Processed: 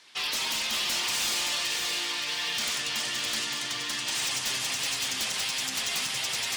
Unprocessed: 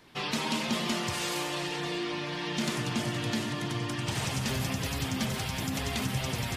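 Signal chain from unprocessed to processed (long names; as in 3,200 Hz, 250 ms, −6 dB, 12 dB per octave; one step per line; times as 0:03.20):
meter weighting curve ITU-R 468
wave folding −21.5 dBFS
feedback echo at a low word length 570 ms, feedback 35%, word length 9 bits, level −4.5 dB
level −2.5 dB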